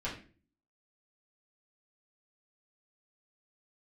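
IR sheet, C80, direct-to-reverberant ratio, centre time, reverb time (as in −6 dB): 12.0 dB, −8.0 dB, 26 ms, 0.40 s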